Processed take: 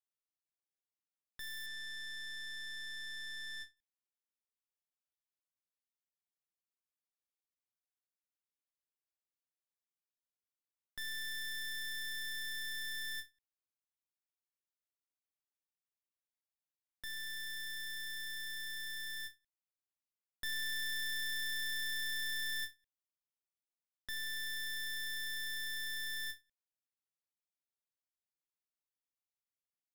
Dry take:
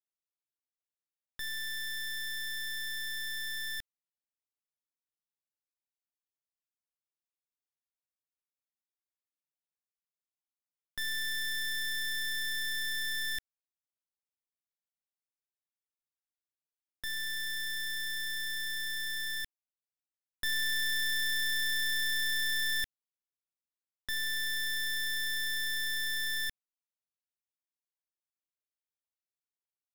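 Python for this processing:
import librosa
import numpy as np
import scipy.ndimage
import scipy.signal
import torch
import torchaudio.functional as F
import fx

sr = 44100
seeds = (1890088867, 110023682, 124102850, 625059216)

y = fx.lowpass(x, sr, hz=8000.0, slope=12, at=(1.66, 3.77))
y = fx.end_taper(y, sr, db_per_s=300.0)
y = y * librosa.db_to_amplitude(-7.0)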